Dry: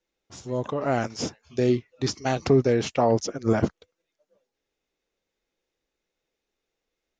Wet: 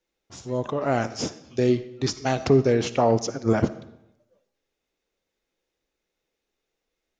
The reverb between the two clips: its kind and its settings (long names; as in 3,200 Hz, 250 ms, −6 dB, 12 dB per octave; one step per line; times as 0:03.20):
comb and all-pass reverb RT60 0.84 s, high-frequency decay 0.85×, pre-delay 15 ms, DRR 14 dB
level +1 dB